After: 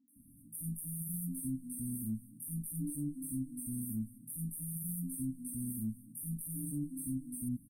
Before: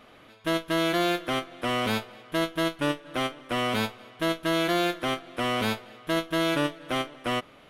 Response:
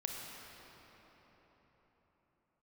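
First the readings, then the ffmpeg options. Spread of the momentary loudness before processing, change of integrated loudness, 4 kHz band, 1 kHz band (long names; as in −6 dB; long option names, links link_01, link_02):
6 LU, −11.5 dB, below −40 dB, below −40 dB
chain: -filter_complex "[0:a]afftfilt=real='re*(1-between(b*sr/4096,300,8300))':imag='im*(1-between(b*sr/4096,300,8300))':win_size=4096:overlap=0.75,lowshelf=frequency=180:gain=-4,bandreject=frequency=210.8:width_type=h:width=4,bandreject=frequency=421.6:width_type=h:width=4,acrossover=split=2500[link_01][link_02];[link_02]acontrast=86[link_03];[link_01][link_03]amix=inputs=2:normalize=0,acrossover=split=340|2700[link_04][link_05][link_06];[link_06]adelay=80[link_07];[link_04]adelay=160[link_08];[link_08][link_05][link_07]amix=inputs=3:normalize=0,alimiter=level_in=8.5dB:limit=-24dB:level=0:latency=1:release=12,volume=-8.5dB,volume=3dB"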